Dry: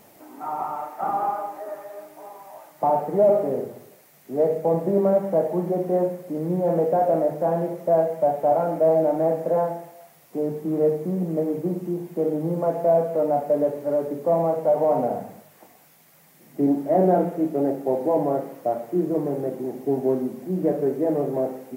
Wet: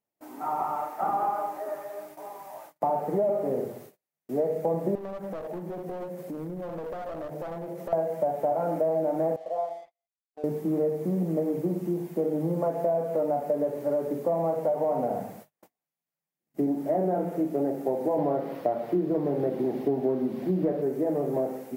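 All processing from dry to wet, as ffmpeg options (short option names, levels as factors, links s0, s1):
-filter_complex "[0:a]asettb=1/sr,asplit=3[s0][s1][s2];[s0]atrim=end=4.954[s3];[s1]atrim=start=4.95:end=7.93,asetpts=PTS-STARTPTS,afade=t=in:d=0.004:c=qsin,afade=t=out:st=2.976:d=0.004:c=qsin,aeval=exprs='clip(val(0),-1,0.0631)':c=same,acompressor=threshold=0.0251:ratio=8:attack=3.2:release=140:knee=1:detection=peak[s4];[s2]atrim=start=7.926[s5];[s3][s4]acrossfade=d=0.004:c1=hsin:c2=qsin[s6];[s6][s5]acrossfade=d=0.004:c1=qsin:c2=hsin,asettb=1/sr,asplit=3[s7][s8][s9];[s7]atrim=end=9.364[s10];[s8]atrim=start=9.36:end=10.44,asetpts=PTS-STARTPTS,afade=t=in:d=0.004:c=qsin,afade=t=out:st=1.076:d=0.004:c=qsin,asplit=3[s11][s12][s13];[s11]bandpass=f=730:t=q:w=8,volume=1[s14];[s12]bandpass=f=1090:t=q:w=8,volume=0.501[s15];[s13]bandpass=f=2440:t=q:w=8,volume=0.355[s16];[s14][s15][s16]amix=inputs=3:normalize=0,aeval=exprs='sgn(val(0))*max(abs(val(0))-0.0015,0)':c=same[s17];[s9]atrim=start=10.436[s18];[s10][s17]acrossfade=d=0.004:c1=hsin:c2=qsin[s19];[s19][s18]acrossfade=d=0.004:c1=qsin:c2=hsin,asettb=1/sr,asplit=3[s20][s21][s22];[s20]atrim=end=18.184[s23];[s21]atrim=start=18.18:end=20.82,asetpts=PTS-STARTPTS,afade=t=in:d=0.004:c=qsin,afade=t=out:st=2.636:d=0.004:c=qsin,highshelf=f=5300:t=q:w=1.5:g=-8.5,acontrast=29[s24];[s22]atrim=start=20.816[s25];[s23][s24]acrossfade=d=0.004:c1=hsin:c2=qsin[s26];[s26][s25]acrossfade=d=0.004:c1=qsin:c2=hsin,agate=range=0.0126:threshold=0.00501:ratio=16:detection=peak,acompressor=threshold=0.0708:ratio=6"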